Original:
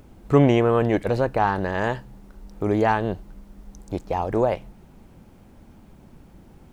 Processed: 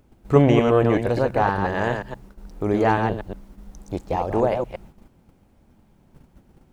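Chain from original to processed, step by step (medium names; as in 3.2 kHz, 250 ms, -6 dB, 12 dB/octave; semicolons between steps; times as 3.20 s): chunks repeated in reverse 119 ms, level -5 dB; gate -44 dBFS, range -9 dB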